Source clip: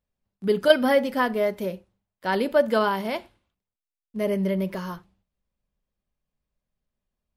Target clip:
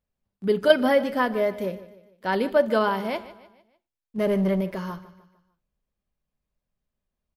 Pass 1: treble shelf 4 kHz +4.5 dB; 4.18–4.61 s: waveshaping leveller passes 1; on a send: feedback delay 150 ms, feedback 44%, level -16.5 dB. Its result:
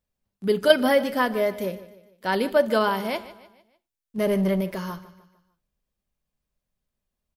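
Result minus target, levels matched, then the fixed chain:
8 kHz band +7.5 dB
treble shelf 4 kHz -4.5 dB; 4.18–4.61 s: waveshaping leveller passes 1; on a send: feedback delay 150 ms, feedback 44%, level -16.5 dB

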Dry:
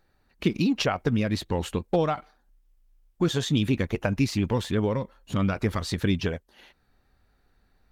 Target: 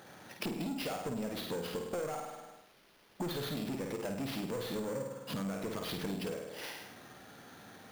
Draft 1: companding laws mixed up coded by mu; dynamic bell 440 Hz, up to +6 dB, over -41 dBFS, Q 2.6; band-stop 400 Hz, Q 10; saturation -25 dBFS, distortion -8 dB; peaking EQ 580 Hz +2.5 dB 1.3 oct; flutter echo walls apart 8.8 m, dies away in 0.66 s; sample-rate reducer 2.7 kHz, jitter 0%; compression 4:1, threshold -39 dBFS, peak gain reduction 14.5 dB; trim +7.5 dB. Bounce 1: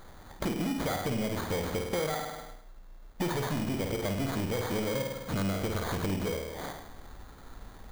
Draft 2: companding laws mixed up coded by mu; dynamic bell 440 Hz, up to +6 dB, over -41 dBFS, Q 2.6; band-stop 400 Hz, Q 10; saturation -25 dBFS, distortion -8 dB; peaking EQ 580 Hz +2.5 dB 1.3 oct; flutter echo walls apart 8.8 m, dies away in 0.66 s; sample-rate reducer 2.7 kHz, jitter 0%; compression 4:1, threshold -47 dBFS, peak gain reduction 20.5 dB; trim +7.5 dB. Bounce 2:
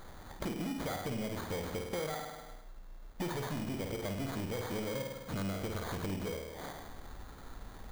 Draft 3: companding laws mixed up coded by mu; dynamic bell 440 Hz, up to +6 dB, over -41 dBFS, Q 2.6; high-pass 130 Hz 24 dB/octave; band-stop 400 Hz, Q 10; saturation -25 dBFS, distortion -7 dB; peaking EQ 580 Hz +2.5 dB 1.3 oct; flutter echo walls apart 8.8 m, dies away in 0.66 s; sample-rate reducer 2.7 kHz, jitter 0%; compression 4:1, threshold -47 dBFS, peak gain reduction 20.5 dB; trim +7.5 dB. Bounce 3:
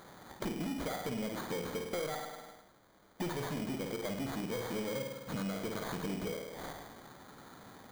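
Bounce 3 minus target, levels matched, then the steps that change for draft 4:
sample-rate reducer: distortion +5 dB
change: sample-rate reducer 7.8 kHz, jitter 0%

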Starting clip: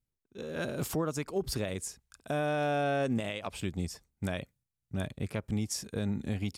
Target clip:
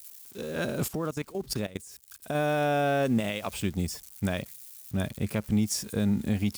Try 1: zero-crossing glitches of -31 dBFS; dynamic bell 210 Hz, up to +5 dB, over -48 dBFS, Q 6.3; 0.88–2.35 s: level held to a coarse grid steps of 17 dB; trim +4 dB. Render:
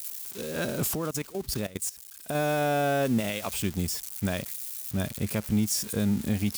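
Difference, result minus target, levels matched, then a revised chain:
zero-crossing glitches: distortion +10 dB
zero-crossing glitches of -41 dBFS; dynamic bell 210 Hz, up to +5 dB, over -48 dBFS, Q 6.3; 0.88–2.35 s: level held to a coarse grid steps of 17 dB; trim +4 dB

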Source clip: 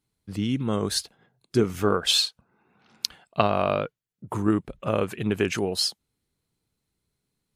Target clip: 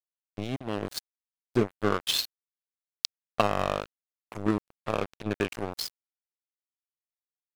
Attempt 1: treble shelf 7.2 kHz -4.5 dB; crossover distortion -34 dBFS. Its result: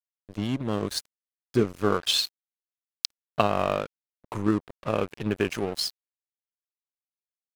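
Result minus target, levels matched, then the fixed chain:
crossover distortion: distortion -8 dB
treble shelf 7.2 kHz -4.5 dB; crossover distortion -25.5 dBFS

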